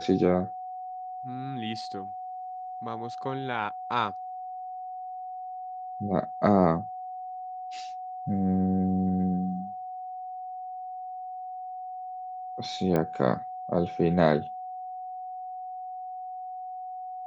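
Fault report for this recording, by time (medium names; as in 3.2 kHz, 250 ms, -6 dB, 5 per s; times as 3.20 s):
whine 740 Hz -35 dBFS
12.96 s: pop -15 dBFS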